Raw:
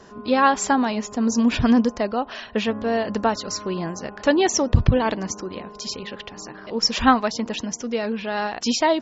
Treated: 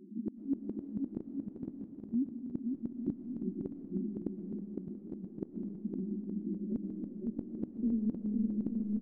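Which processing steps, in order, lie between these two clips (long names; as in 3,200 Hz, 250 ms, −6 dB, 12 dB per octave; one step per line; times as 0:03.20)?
brick-wall band-pass 170–380 Hz
downward compressor 2.5 to 1, threshold −24 dBFS, peak gain reduction 7.5 dB
0:06.56–0:08.62: amplitude modulation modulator 210 Hz, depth 15%
gate with flip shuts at −23 dBFS, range −33 dB
bouncing-ball delay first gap 510 ms, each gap 0.7×, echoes 5
comb and all-pass reverb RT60 3.3 s, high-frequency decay 0.65×, pre-delay 75 ms, DRR 8.5 dB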